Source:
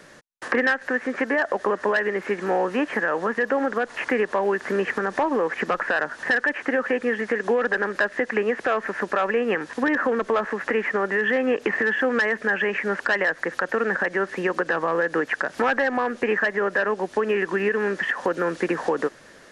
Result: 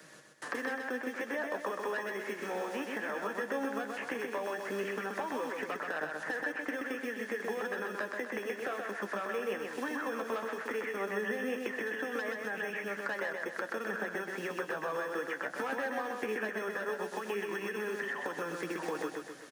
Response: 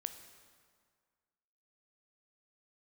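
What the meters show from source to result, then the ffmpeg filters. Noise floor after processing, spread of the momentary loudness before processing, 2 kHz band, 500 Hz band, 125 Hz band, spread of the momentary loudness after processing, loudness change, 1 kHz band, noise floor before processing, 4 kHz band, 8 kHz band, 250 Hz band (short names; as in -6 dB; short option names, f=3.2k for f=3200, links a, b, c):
-46 dBFS, 4 LU, -13.0 dB, -13.0 dB, -13.0 dB, 2 LU, -13.0 dB, -12.0 dB, -47 dBFS, -9.5 dB, n/a, -12.5 dB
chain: -filter_complex "[0:a]highpass=100,highshelf=f=6.9k:g=9.5,acrossover=split=170|1400[a][b][c];[a]acompressor=threshold=-54dB:ratio=4[d];[b]acompressor=threshold=-29dB:ratio=4[e];[c]acompressor=threshold=-37dB:ratio=4[f];[d][e][f]amix=inputs=3:normalize=0,acrossover=split=430[g][h];[g]acrusher=samples=15:mix=1:aa=0.000001[i];[i][h]amix=inputs=2:normalize=0,flanger=delay=6.3:depth=8.7:regen=48:speed=0.16:shape=sinusoidal,aecho=1:1:128|256|384|512|640|768:0.631|0.303|0.145|0.0698|0.0335|0.0161,volume=-3.5dB"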